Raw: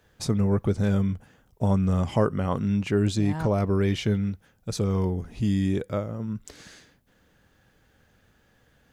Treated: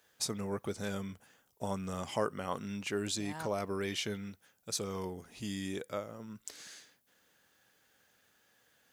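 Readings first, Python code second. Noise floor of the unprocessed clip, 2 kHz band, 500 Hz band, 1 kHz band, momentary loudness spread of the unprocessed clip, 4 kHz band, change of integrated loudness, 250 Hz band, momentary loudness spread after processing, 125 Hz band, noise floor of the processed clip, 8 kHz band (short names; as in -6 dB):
-64 dBFS, -4.5 dB, -9.5 dB, -6.5 dB, 9 LU, -1.5 dB, -12.5 dB, -14.5 dB, 11 LU, -19.5 dB, -72 dBFS, +1.5 dB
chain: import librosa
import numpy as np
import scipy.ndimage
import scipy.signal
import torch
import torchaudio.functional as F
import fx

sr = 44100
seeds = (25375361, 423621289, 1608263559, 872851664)

y = fx.highpass(x, sr, hz=580.0, slope=6)
y = fx.high_shelf(y, sr, hz=4400.0, db=9.5)
y = y * librosa.db_to_amplitude(-5.5)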